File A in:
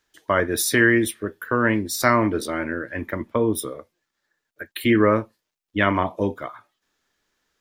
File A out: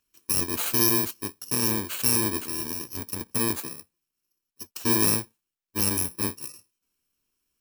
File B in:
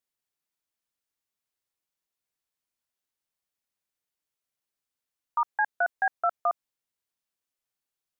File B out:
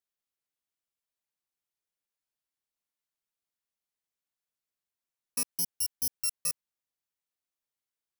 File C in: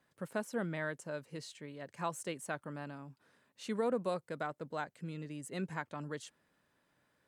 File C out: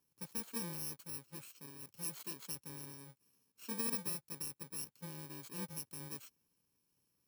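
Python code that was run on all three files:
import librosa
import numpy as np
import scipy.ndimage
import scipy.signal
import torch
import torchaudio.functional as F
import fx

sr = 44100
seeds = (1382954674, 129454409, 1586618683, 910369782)

y = fx.bit_reversed(x, sr, seeds[0], block=64)
y = F.gain(torch.from_numpy(y), -5.0).numpy()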